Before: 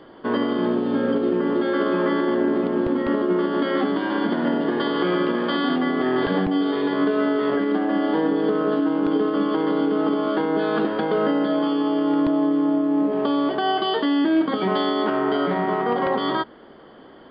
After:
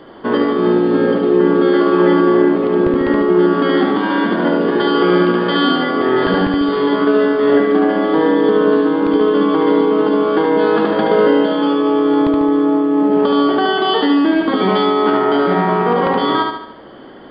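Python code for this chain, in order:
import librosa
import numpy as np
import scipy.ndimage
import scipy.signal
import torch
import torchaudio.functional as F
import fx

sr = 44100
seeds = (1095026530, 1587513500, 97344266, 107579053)

y = fx.echo_feedback(x, sr, ms=73, feedback_pct=49, wet_db=-3.5)
y = y * 10.0 ** (6.0 / 20.0)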